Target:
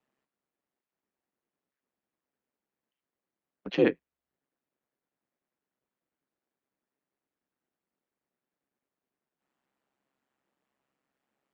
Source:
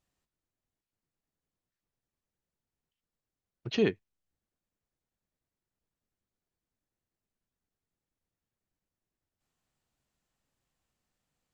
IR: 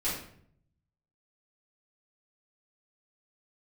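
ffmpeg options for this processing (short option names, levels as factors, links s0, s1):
-filter_complex "[0:a]aeval=exprs='val(0)*sin(2*PI*67*n/s)':c=same,acrossover=split=190 2700:gain=0.0631 1 0.178[s0][s1][s2];[s0][s1][s2]amix=inputs=3:normalize=0,volume=2.37"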